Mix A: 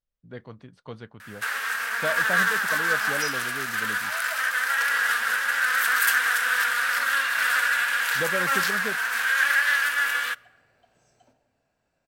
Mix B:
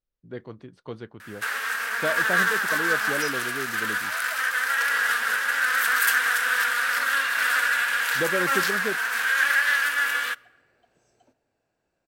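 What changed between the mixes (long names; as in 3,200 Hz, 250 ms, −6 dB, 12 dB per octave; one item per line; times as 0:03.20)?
second sound: send −11.0 dB
master: add parametric band 350 Hz +8.5 dB 0.6 octaves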